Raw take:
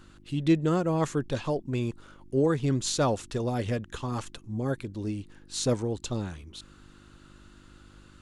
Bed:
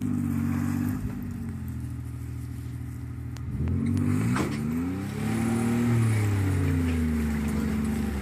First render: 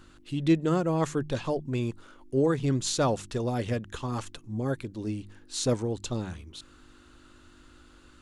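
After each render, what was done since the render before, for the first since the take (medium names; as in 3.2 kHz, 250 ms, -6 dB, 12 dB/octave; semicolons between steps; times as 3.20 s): de-hum 50 Hz, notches 4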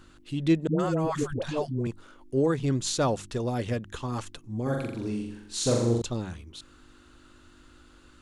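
0.67–1.87 s: phase dispersion highs, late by 123 ms, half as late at 490 Hz; 4.62–6.02 s: flutter echo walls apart 7.3 m, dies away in 0.81 s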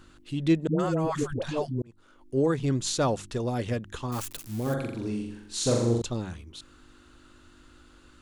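1.82–2.41 s: fade in; 4.12–4.74 s: zero-crossing glitches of -29.5 dBFS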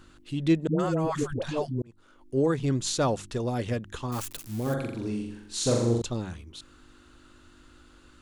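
no audible change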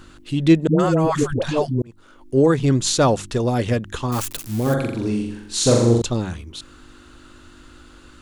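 trim +9 dB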